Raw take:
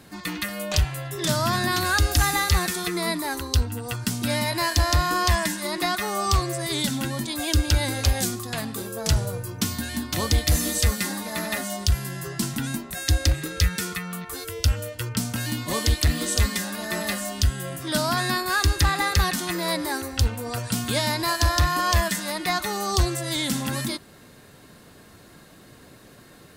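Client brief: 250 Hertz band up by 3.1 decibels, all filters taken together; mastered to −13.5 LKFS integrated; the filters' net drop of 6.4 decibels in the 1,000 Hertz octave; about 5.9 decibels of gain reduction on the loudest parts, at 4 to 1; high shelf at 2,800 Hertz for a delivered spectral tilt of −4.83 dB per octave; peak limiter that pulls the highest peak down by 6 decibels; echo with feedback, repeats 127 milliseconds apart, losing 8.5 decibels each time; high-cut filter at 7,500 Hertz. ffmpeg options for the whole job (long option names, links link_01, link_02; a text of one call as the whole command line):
ffmpeg -i in.wav -af "lowpass=7500,equalizer=frequency=250:width_type=o:gain=4.5,equalizer=frequency=1000:width_type=o:gain=-7.5,highshelf=frequency=2800:gain=-7.5,acompressor=threshold=-22dB:ratio=4,alimiter=limit=-19.5dB:level=0:latency=1,aecho=1:1:127|254|381|508:0.376|0.143|0.0543|0.0206,volume=16dB" out.wav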